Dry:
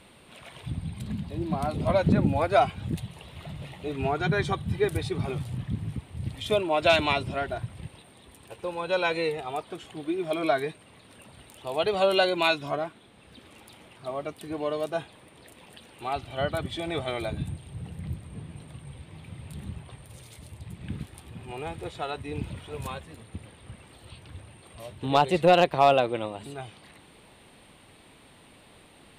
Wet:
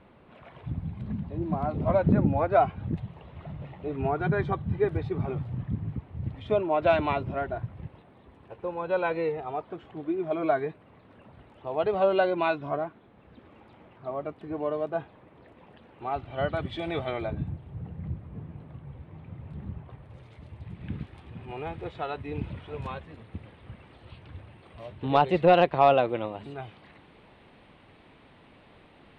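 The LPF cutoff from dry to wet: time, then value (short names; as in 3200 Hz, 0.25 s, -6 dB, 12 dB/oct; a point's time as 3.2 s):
16.06 s 1500 Hz
16.87 s 3500 Hz
17.4 s 1400 Hz
19.82 s 1400 Hz
20.85 s 2600 Hz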